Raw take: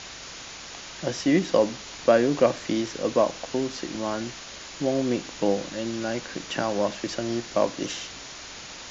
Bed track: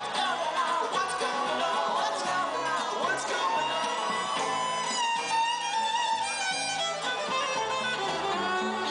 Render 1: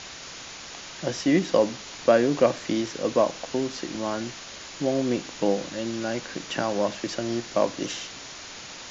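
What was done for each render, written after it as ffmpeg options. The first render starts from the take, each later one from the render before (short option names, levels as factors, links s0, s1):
-af "bandreject=f=50:t=h:w=4,bandreject=f=100:t=h:w=4"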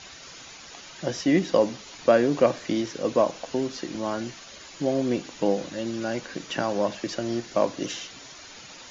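-af "afftdn=nr=8:nf=-41"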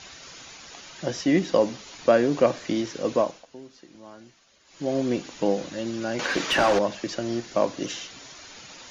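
-filter_complex "[0:a]asettb=1/sr,asplit=3[s0][s1][s2];[s0]atrim=end=6.194[s3];[s1]atrim=start=6.19:end=6.79,asetpts=PTS-STARTPTS,afade=t=in:d=0.004:c=qsin,afade=t=out:st=0.596:d=0.004:c=qsin,asplit=2[s4][s5];[s5]highpass=f=720:p=1,volume=15.8,asoftclip=type=tanh:threshold=0.299[s6];[s4][s6]amix=inputs=2:normalize=0,lowpass=f=2500:p=1,volume=0.501[s7];[s2]atrim=start=6.786[s8];[s3][s7]acrossfade=d=0.004:c1=hsin:c2=qsin[s9];[s9][s8]acrossfade=d=0.004:c1=qsin:c2=hsin,asplit=3[s10][s11][s12];[s10]atrim=end=3.46,asetpts=PTS-STARTPTS,afade=t=out:st=3.15:d=0.31:silence=0.149624[s13];[s11]atrim=start=3.46:end=4.65,asetpts=PTS-STARTPTS,volume=0.15[s14];[s12]atrim=start=4.65,asetpts=PTS-STARTPTS,afade=t=in:d=0.31:silence=0.149624[s15];[s13][s14][s15]concat=n=3:v=0:a=1"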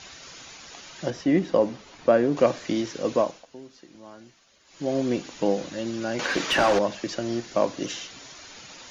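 -filter_complex "[0:a]asettb=1/sr,asplit=3[s0][s1][s2];[s0]atrim=end=1.104[s3];[s1]atrim=start=1.1:end=2.37,asetpts=PTS-STARTPTS,afade=t=in:d=0.004:c=qsin,afade=t=out:st=1.266:d=0.004:c=qsin,highshelf=f=2800:g=-11[s4];[s2]atrim=start=2.366[s5];[s3][s4]acrossfade=d=0.004:c1=hsin:c2=qsin[s6];[s6][s5]acrossfade=d=0.004:c1=qsin:c2=hsin"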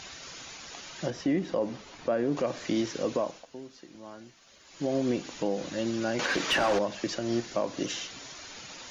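-af "alimiter=limit=0.119:level=0:latency=1:release=162,acompressor=mode=upward:threshold=0.00316:ratio=2.5"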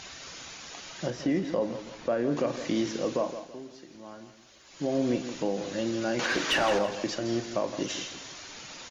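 -filter_complex "[0:a]asplit=2[s0][s1];[s1]adelay=41,volume=0.211[s2];[s0][s2]amix=inputs=2:normalize=0,aecho=1:1:165|330|495|660:0.282|0.093|0.0307|0.0101"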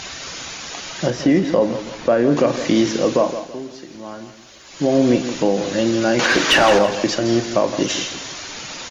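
-af "volume=3.98"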